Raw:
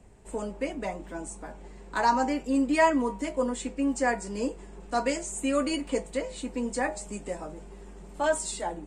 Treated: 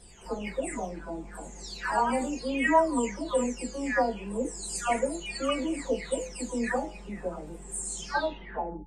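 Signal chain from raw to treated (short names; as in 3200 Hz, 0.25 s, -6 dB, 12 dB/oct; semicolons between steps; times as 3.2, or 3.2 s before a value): spectral delay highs early, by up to 0.617 s; de-hum 427 Hz, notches 2; gain +1.5 dB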